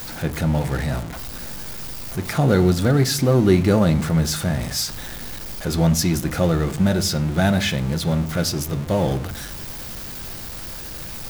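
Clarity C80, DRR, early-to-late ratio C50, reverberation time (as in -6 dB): 20.0 dB, 9.0 dB, 16.5 dB, 0.55 s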